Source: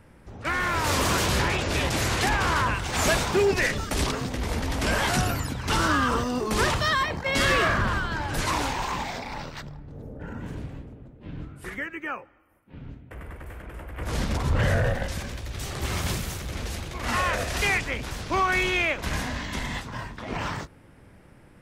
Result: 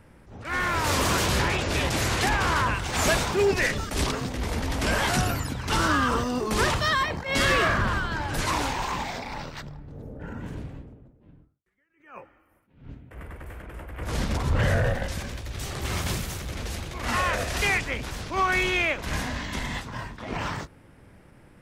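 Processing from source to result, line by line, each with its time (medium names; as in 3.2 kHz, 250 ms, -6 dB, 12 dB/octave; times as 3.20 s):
10.48–11.66 s: studio fade out
whole clip: attacks held to a fixed rise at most 130 dB/s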